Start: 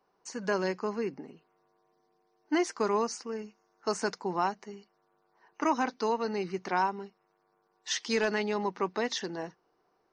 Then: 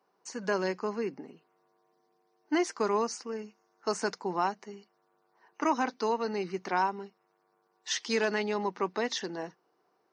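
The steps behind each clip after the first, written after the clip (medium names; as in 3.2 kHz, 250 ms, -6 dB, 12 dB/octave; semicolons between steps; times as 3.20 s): high-pass 150 Hz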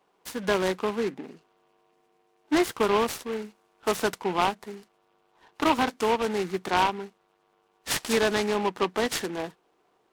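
delay time shaken by noise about 1.6 kHz, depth 0.065 ms; trim +5 dB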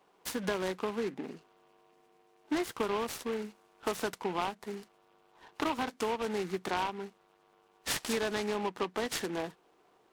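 compression 3:1, threshold -34 dBFS, peak gain reduction 13 dB; trim +1.5 dB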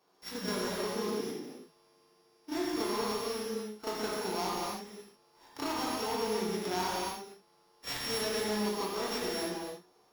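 sorted samples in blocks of 8 samples; reverse echo 33 ms -7.5 dB; gated-style reverb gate 340 ms flat, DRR -5 dB; trim -6.5 dB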